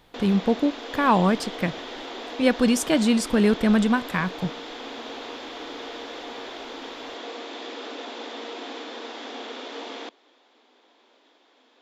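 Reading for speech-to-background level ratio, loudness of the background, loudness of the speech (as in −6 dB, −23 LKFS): 13.5 dB, −36.0 LKFS, −22.5 LKFS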